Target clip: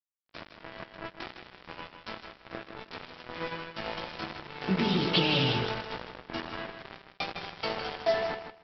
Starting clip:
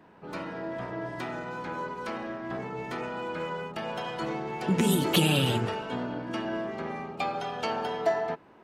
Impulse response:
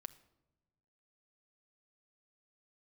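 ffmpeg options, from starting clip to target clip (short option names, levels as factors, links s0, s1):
-filter_complex "[0:a]lowshelf=f=120:g=-3.5,acrossover=split=110|3700[s0][s1][s2];[s0]acompressor=mode=upward:threshold=0.00355:ratio=2.5[s3];[s1]flanger=delay=18:depth=5:speed=0.27[s4];[s3][s4][s2]amix=inputs=3:normalize=0,crystalizer=i=1.5:c=0,aresample=11025,acrusher=bits=4:mix=0:aa=0.5,aresample=44100,aecho=1:1:157|314|471:0.398|0.0796|0.0159"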